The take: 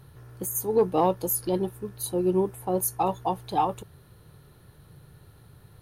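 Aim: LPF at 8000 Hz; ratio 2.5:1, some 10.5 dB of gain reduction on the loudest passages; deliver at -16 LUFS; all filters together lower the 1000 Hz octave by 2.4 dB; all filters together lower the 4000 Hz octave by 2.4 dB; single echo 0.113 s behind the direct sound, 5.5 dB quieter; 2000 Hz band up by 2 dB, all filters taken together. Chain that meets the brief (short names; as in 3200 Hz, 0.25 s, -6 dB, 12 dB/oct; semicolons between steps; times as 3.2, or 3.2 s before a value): LPF 8000 Hz; bell 1000 Hz -4 dB; bell 2000 Hz +5.5 dB; bell 4000 Hz -4.5 dB; compressor 2.5:1, threshold -33 dBFS; echo 0.113 s -5.5 dB; gain +18.5 dB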